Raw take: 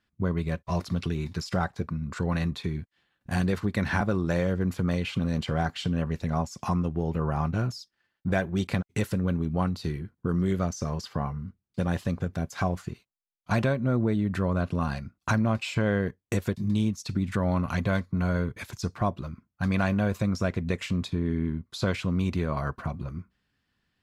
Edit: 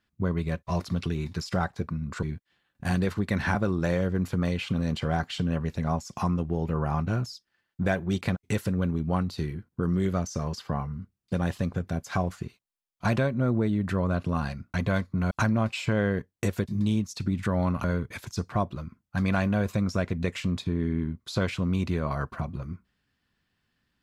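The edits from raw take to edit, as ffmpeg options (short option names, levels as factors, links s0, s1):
-filter_complex "[0:a]asplit=5[s0][s1][s2][s3][s4];[s0]atrim=end=2.232[s5];[s1]atrim=start=2.688:end=15.202[s6];[s2]atrim=start=17.728:end=18.302[s7];[s3]atrim=start=15.198:end=17.732[s8];[s4]atrim=start=18.298[s9];[s5][s6]acrossfade=d=0.004:c1=hsin:c2=hsin[s10];[s10][s7]acrossfade=d=0.004:c1=hsin:c2=hsin[s11];[s11][s8]acrossfade=d=0.004:c1=hsin:c2=hsin[s12];[s12][s9]acrossfade=d=0.004:c1=hsin:c2=hsin"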